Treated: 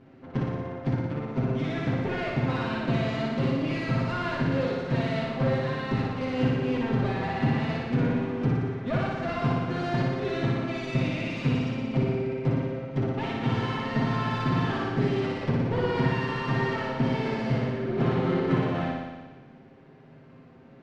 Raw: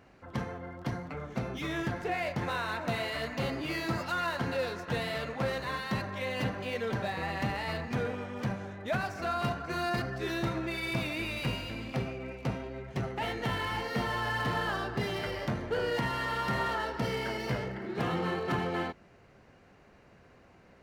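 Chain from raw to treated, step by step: minimum comb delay 7.6 ms; LPF 4000 Hz 12 dB/oct; bell 200 Hz +14.5 dB 2.2 oct; on a send: flutter echo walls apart 10.1 m, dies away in 1.3 s; on the sum: gain -2.5 dB

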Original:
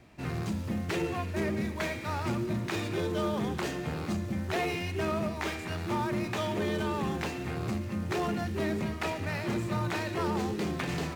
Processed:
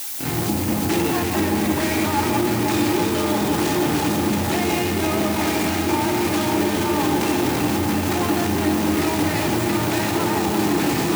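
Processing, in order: opening faded in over 2.71 s; high shelf 4700 Hz +7 dB; in parallel at -10 dB: fuzz box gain 57 dB, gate -56 dBFS; on the sum: added noise blue -33 dBFS; echo with dull and thin repeats by turns 0.169 s, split 1100 Hz, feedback 90%, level -4 dB; limiter -18.5 dBFS, peak gain reduction 12 dB; HPF 80 Hz; small resonant body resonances 300/830 Hz, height 13 dB, ringing for 70 ms; gain +3.5 dB

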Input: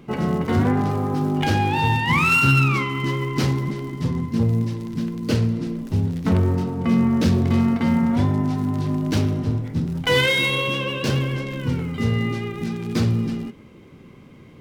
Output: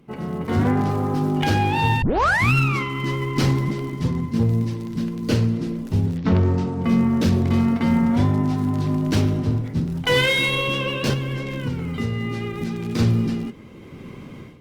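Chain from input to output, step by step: 2.02 tape start 0.52 s; AGC gain up to 16 dB; 6.16–6.81 LPF 4800 Hz -> 9900 Hz 24 dB/oct; 11.13–12.99 compressor 4:1, threshold -15 dBFS, peak gain reduction 7 dB; gain -7.5 dB; Opus 32 kbps 48000 Hz

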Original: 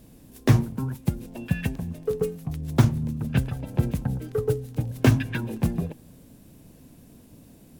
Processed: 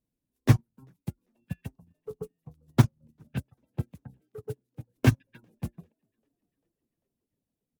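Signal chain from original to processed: 3.28–4.97 HPF 63 Hz 24 dB/oct; reverb removal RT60 0.63 s; 1.66–2.72 graphic EQ 125/1000/2000 Hz +4/+7/-9 dB; frequency-shifting echo 0.395 s, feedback 61%, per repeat +55 Hz, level -20 dB; upward expander 2.5:1, over -35 dBFS

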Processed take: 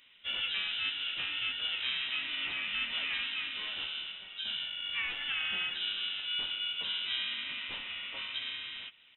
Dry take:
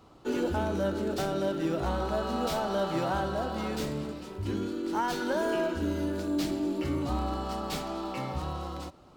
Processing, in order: inverted band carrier 3200 Hz; harmoniser -12 st -15 dB, -4 st -14 dB, +3 st -5 dB; gain -7 dB

